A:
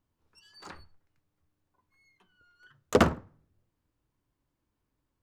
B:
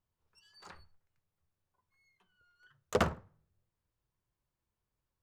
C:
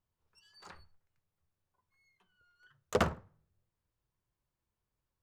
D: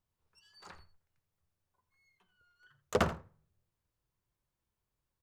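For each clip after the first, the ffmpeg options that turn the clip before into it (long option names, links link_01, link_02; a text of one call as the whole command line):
ffmpeg -i in.wav -af "equalizer=frequency=280:width_type=o:width=0.43:gain=-12.5,volume=-6dB" out.wav
ffmpeg -i in.wav -af anull out.wav
ffmpeg -i in.wav -af "aecho=1:1:84:0.168" out.wav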